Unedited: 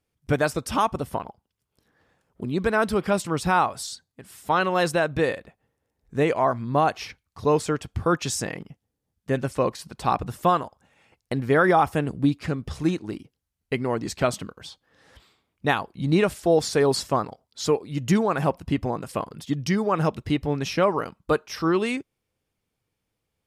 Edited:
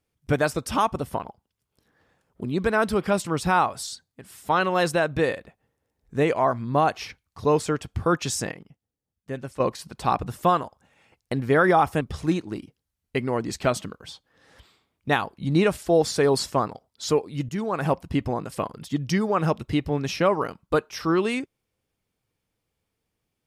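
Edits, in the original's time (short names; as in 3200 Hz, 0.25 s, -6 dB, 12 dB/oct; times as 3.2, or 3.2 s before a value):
8.52–9.6 gain -8 dB
12.01–12.58 cut
18.06–18.45 fade in, from -14.5 dB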